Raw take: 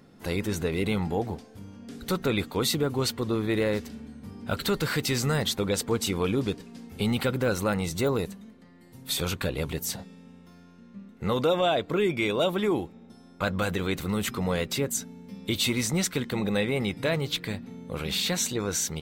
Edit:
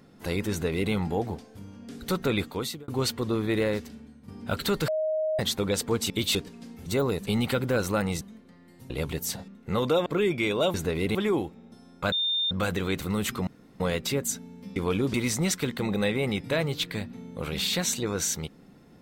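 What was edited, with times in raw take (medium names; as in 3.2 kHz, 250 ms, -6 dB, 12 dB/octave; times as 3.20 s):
0.51–0.92 s: copy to 12.53 s
2.41–2.88 s: fade out
3.63–4.28 s: fade out, to -10 dB
4.88–5.39 s: bleep 626 Hz -24 dBFS
6.10–6.48 s: swap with 15.42–15.67 s
7.93–8.34 s: move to 6.99 s
9.03–9.50 s: delete
10.08–11.02 s: delete
11.60–11.85 s: delete
13.50 s: add tone 3.62 kHz -23.5 dBFS 0.39 s
14.46 s: insert room tone 0.33 s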